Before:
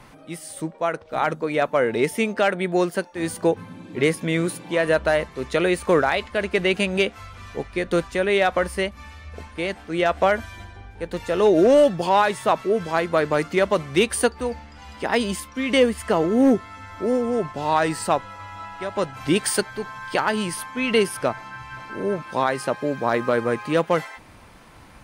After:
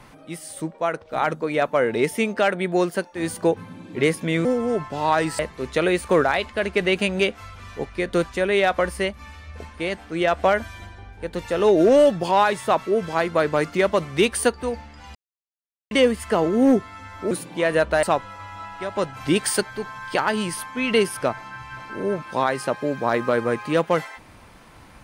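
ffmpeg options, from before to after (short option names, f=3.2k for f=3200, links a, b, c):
-filter_complex "[0:a]asplit=7[a][b][c][d][e][f][g];[a]atrim=end=4.452[h];[b]atrim=start=17.088:end=18.032[i];[c]atrim=start=5.168:end=14.93,asetpts=PTS-STARTPTS,afade=t=out:st=9.758:d=0.004:c=hsin[j];[d]atrim=start=14.93:end=15.69,asetpts=PTS-STARTPTS,volume=0[k];[e]atrim=start=15.69:end=17.092,asetpts=PTS-STARTPTS,afade=t=in:d=0.004:c=hsin[l];[f]atrim=start=4.448:end=5.172[m];[g]atrim=start=18.028[n];[h][i]acrossfade=d=0.004:c1=hsin:c2=hsin[o];[j][k][l]concat=n=3:v=0:a=1[p];[o][p]acrossfade=d=0.004:c1=hsin:c2=hsin[q];[q][m]acrossfade=d=0.004:c1=hsin:c2=hsin[r];[r][n]acrossfade=d=0.004:c1=hsin:c2=hsin"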